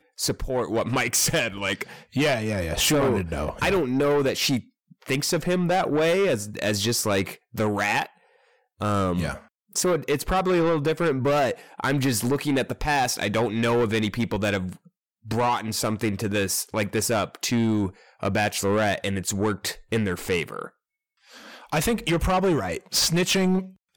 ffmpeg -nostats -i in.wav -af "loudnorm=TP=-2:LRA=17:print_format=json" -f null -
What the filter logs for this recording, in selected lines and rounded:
"input_i" : "-24.1",
"input_tp" : "-14.3",
"input_lra" : "2.8",
"input_thresh" : "-34.5",